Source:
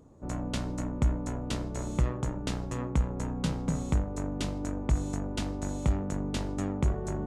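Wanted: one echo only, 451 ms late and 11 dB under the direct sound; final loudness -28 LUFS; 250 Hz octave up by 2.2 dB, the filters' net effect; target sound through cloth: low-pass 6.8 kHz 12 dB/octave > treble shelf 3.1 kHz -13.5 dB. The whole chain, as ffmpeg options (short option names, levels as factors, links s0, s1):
-af "lowpass=6800,equalizer=f=250:t=o:g=3,highshelf=f=3100:g=-13.5,aecho=1:1:451:0.282,volume=1.5"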